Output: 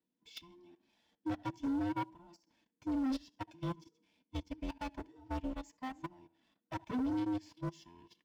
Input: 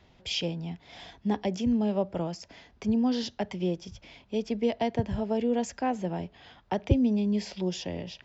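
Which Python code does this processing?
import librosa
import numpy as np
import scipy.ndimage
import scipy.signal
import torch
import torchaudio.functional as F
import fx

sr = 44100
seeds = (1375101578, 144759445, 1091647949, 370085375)

p1 = fx.band_invert(x, sr, width_hz=500)
p2 = p1 + fx.echo_tape(p1, sr, ms=76, feedback_pct=47, wet_db=-12.0, lp_hz=1700.0, drive_db=7.0, wow_cents=38, dry=0)
p3 = fx.leveller(p2, sr, passes=1)
p4 = fx.high_shelf(p3, sr, hz=6100.0, db=5.0)
p5 = fx.comb_fb(p4, sr, f0_hz=160.0, decay_s=0.45, harmonics='all', damping=0.0, mix_pct=40)
p6 = fx.dmg_noise_band(p5, sr, seeds[0], low_hz=180.0, high_hz=330.0, level_db=-60.0)
p7 = fx.level_steps(p6, sr, step_db=14)
p8 = 10.0 ** (-31.5 / 20.0) * np.tanh(p7 / 10.0 ** (-31.5 / 20.0))
p9 = fx.notch_comb(p8, sr, f0_hz=410.0)
p10 = fx.upward_expand(p9, sr, threshold_db=-46.0, expansion=2.5)
y = p10 * 10.0 ** (1.5 / 20.0)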